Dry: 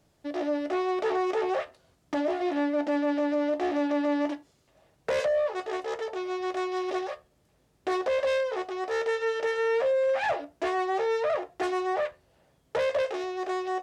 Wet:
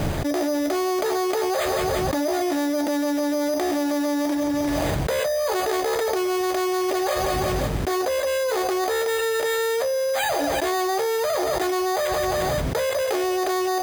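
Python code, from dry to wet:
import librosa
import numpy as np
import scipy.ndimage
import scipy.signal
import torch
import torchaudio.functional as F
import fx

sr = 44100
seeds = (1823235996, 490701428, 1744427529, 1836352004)

y = fx.high_shelf(x, sr, hz=3600.0, db=10.5)
y = np.repeat(scipy.signal.resample_poly(y, 1, 8), 8)[:len(y)]
y = fx.low_shelf(y, sr, hz=120.0, db=7.5)
y = fx.echo_feedback(y, sr, ms=176, feedback_pct=49, wet_db=-21.5)
y = fx.env_flatten(y, sr, amount_pct=100)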